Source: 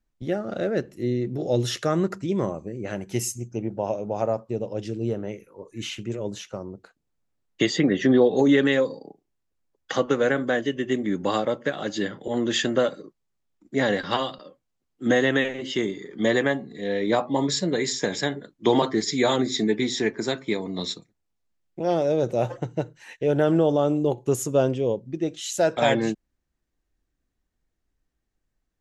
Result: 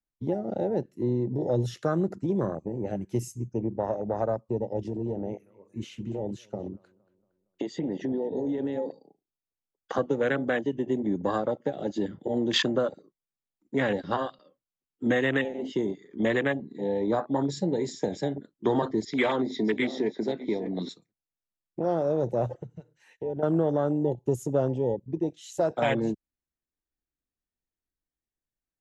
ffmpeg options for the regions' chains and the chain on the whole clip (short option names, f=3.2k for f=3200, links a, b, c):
-filter_complex "[0:a]asettb=1/sr,asplit=3[a][b][c];[a]atrim=end=4.844[d];[b]atrim=start=4.84:end=8.92,asetpts=PTS-STARTPTS,afade=t=in:d=0.004:c=qsin,afade=t=out:st=4.076:d=0.004:c=qsin,acompressor=threshold=-28dB:ratio=4:attack=3.2:release=140:knee=1:detection=peak,asplit=2[e][f];[f]adelay=231,lowpass=f=1.8k:p=1,volume=-14.5dB,asplit=2[g][h];[h]adelay=231,lowpass=f=1.8k:p=1,volume=0.51,asplit=2[i][j];[j]adelay=231,lowpass=f=1.8k:p=1,volume=0.51,asplit=2[k][l];[l]adelay=231,lowpass=f=1.8k:p=1,volume=0.51,asplit=2[m][n];[n]adelay=231,lowpass=f=1.8k:p=1,volume=0.51[o];[e][g][i][k][m][o]amix=inputs=6:normalize=0,atrim=end_sample=179928[p];[c]atrim=start=8.916[q];[d][p]acrossfade=d=0.004:c1=hsin:c2=qsin[r];[r][q]acrossfade=d=0.004:c1=qsin:c2=hsin,asettb=1/sr,asplit=3[s][t][u];[s]atrim=end=19.054[v];[t]atrim=start=19.05:end=20.89,asetpts=PTS-STARTPTS,afade=t=in:d=0.004:c=qsin,afade=t=out:st=1.836:d=0.004:c=qsin,asoftclip=type=hard:threshold=-14.5dB,highpass=170,equalizer=f=1k:t=q:w=4:g=3,equalizer=f=2k:t=q:w=4:g=6,equalizer=f=3.3k:t=q:w=4:g=3,lowpass=f=5.7k:w=0.5412,lowpass=f=5.7k:w=1.3066,aecho=1:1:595:0.211,atrim=end_sample=81144[w];[u]atrim=start=20.886[x];[v][w]acrossfade=d=0.004:c1=hsin:c2=qsin[y];[y][x]acrossfade=d=0.004:c1=qsin:c2=hsin,asettb=1/sr,asplit=3[z][aa][ab];[z]atrim=end=22.544[ac];[aa]atrim=start=22.54:end=23.43,asetpts=PTS-STARTPTS,afade=t=in:d=0.004:c=qsin,afade=t=out:st=0.886:d=0.004:c=qsin,equalizer=f=460:w=4.6:g=4,acompressor=threshold=-41dB:ratio=2:attack=3.2:release=140:knee=1:detection=peak[ad];[ab]atrim=start=23.426[ae];[ac][ad]acrossfade=d=0.004:c1=hsin:c2=qsin[af];[af][ae]acrossfade=d=0.004:c1=qsin:c2=hsin,afwtdn=0.0501,lowshelf=f=91:g=-6,acrossover=split=130|3000[ag][ah][ai];[ah]acompressor=threshold=-31dB:ratio=2[aj];[ag][aj][ai]amix=inputs=3:normalize=0,volume=3dB"